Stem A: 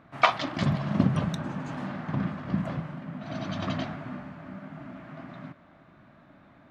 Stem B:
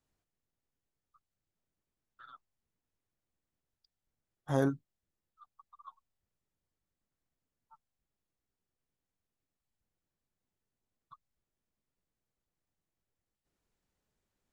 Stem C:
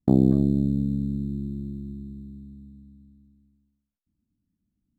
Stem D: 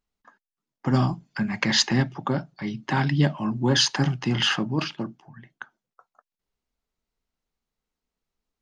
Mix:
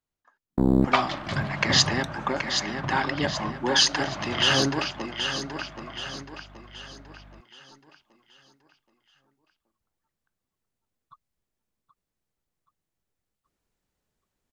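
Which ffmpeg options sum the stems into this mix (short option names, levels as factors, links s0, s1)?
-filter_complex "[0:a]equalizer=f=220:w=1.9:g=-15,aeval=exprs='val(0)+0.00316*(sin(2*PI*50*n/s)+sin(2*PI*2*50*n/s)/2+sin(2*PI*3*50*n/s)/3+sin(2*PI*4*50*n/s)/4+sin(2*PI*5*50*n/s)/5)':c=same,adelay=700,volume=0.376[s0];[1:a]volume=0.447,asplit=2[s1][s2];[s2]volume=0.266[s3];[2:a]highpass=190,aeval=exprs='(tanh(5.62*val(0)+0.65)-tanh(0.65))/5.62':c=same,adelay=500,volume=0.891[s4];[3:a]highpass=410,volume=0.376,asplit=3[s5][s6][s7];[s6]volume=0.447[s8];[s7]apad=whole_len=241826[s9];[s4][s9]sidechaincompress=threshold=0.001:ratio=8:attack=16:release=691[s10];[s3][s8]amix=inputs=2:normalize=0,aecho=0:1:776|1552|2328|3104|3880|4656:1|0.43|0.185|0.0795|0.0342|0.0147[s11];[s0][s1][s10][s5][s11]amix=inputs=5:normalize=0,dynaudnorm=f=170:g=9:m=3.16"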